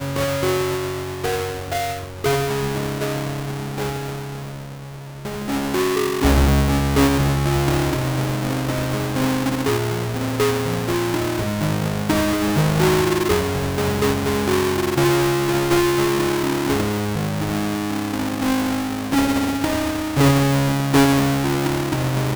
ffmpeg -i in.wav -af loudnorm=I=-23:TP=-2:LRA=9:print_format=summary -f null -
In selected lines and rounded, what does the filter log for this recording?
Input Integrated:    -20.2 LUFS
Input True Peak:      -6.1 dBTP
Input LRA:             5.5 LU
Input Threshold:     -30.3 LUFS